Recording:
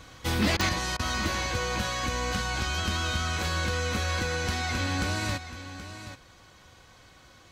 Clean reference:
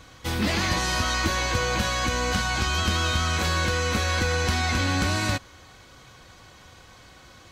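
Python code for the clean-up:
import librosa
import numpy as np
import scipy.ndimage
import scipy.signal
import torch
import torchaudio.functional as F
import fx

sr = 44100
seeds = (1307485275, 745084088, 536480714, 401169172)

y = fx.fix_declick_ar(x, sr, threshold=10.0)
y = fx.fix_interpolate(y, sr, at_s=(0.57, 0.97), length_ms=22.0)
y = fx.fix_echo_inverse(y, sr, delay_ms=777, level_db=-12.0)
y = fx.gain(y, sr, db=fx.steps((0.0, 0.0), (0.69, 5.0)))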